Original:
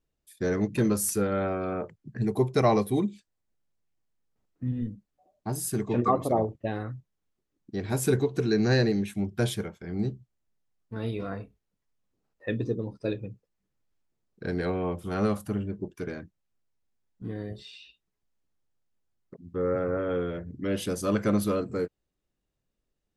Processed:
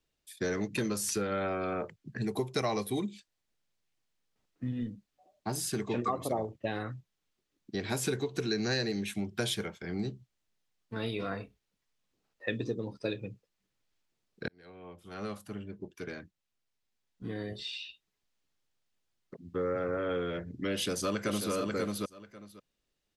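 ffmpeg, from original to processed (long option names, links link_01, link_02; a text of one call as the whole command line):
ffmpeg -i in.wav -filter_complex "[0:a]asplit=2[link_01][link_02];[link_02]afade=type=in:start_time=20.72:duration=0.01,afade=type=out:start_time=21.51:duration=0.01,aecho=0:1:540|1080:0.562341|0.0562341[link_03];[link_01][link_03]amix=inputs=2:normalize=0,asplit=2[link_04][link_05];[link_04]atrim=end=14.48,asetpts=PTS-STARTPTS,afade=type=out:start_time=14.476:duration=0.004:curve=hsin[link_06];[link_05]atrim=start=14.48,asetpts=PTS-STARTPTS,afade=type=in:duration=3.12[link_07];[link_06][link_07]concat=n=2:v=0:a=1,equalizer=frequency=3600:width=0.52:gain=8,acrossover=split=110|6500[link_08][link_09][link_10];[link_08]acompressor=threshold=-46dB:ratio=4[link_11];[link_09]acompressor=threshold=-29dB:ratio=4[link_12];[link_10]acompressor=threshold=-40dB:ratio=4[link_13];[link_11][link_12][link_13]amix=inputs=3:normalize=0,lowshelf=frequency=170:gain=-4.5" out.wav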